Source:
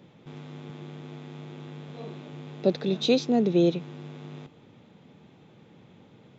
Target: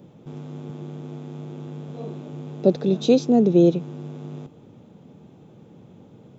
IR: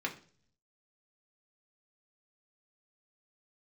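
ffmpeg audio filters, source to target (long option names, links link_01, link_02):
-af "equalizer=frequency=1000:width_type=o:width=1:gain=-3,equalizer=frequency=2000:width_type=o:width=1:gain=-11,equalizer=frequency=4000:width_type=o:width=1:gain=-8,volume=6.5dB"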